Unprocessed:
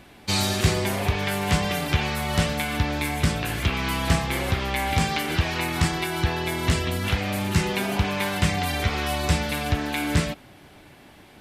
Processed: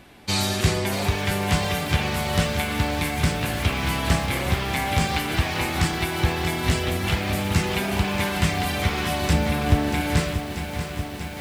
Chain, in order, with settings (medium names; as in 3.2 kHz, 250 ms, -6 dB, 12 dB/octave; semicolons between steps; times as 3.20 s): 9.33–10.01 s: tilt shelf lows +5.5 dB, about 1.3 kHz; bit-crushed delay 635 ms, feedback 80%, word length 7-bit, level -9 dB